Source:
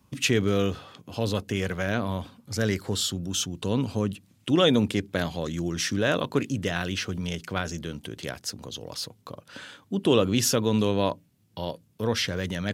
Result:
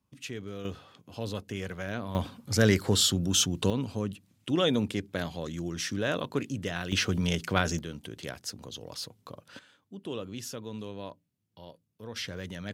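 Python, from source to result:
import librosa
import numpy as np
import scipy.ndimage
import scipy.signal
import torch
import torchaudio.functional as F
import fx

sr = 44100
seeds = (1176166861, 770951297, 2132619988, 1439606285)

y = fx.gain(x, sr, db=fx.steps((0.0, -16.0), (0.65, -8.0), (2.15, 3.5), (3.7, -5.5), (6.92, 3.0), (7.79, -4.5), (9.59, -16.0), (12.16, -9.0)))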